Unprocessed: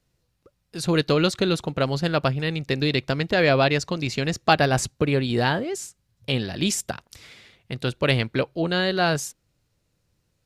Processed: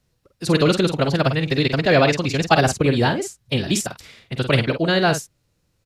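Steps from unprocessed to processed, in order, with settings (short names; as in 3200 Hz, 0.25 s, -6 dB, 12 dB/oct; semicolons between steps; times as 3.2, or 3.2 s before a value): echo 86 ms -8.5 dB; time stretch by phase-locked vocoder 0.56×; gain +4.5 dB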